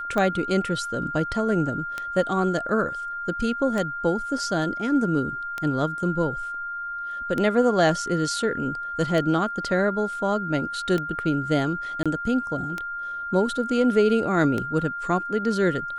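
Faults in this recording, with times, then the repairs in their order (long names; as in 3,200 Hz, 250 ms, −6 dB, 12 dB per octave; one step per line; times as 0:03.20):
scratch tick 33 1/3 rpm −14 dBFS
whistle 1,400 Hz −29 dBFS
0:12.03–0:12.06: drop-out 26 ms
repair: click removal
notch filter 1,400 Hz, Q 30
repair the gap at 0:12.03, 26 ms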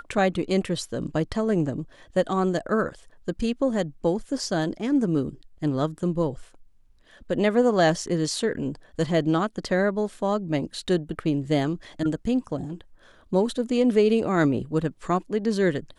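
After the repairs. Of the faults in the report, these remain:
none of them is left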